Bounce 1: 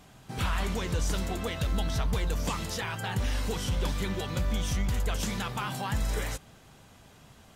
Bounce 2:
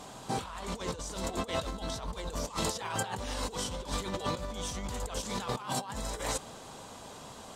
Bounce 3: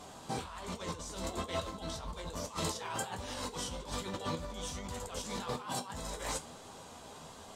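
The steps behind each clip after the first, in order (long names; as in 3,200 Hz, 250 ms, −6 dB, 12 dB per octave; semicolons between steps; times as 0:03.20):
octave-band graphic EQ 250/500/1,000/4,000/8,000 Hz +6/+10/+12/+8/+12 dB; compressor whose output falls as the input rises −28 dBFS, ratio −0.5; level −6.5 dB
tuned comb filter 81 Hz, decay 0.27 s, harmonics all, mix 60%; flanger 1.2 Hz, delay 9.2 ms, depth 6.2 ms, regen −37%; level +5 dB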